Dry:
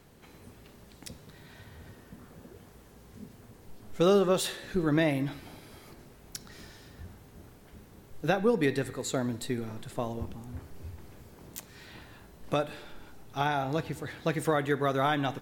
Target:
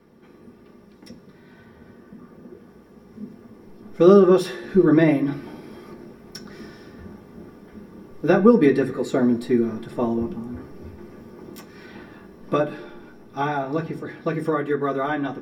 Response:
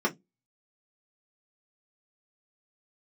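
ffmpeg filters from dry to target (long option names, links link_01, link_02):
-filter_complex "[0:a]dynaudnorm=framelen=810:gausssize=9:maxgain=6dB[link_01];[1:a]atrim=start_sample=2205[link_02];[link_01][link_02]afir=irnorm=-1:irlink=0,volume=-9.5dB"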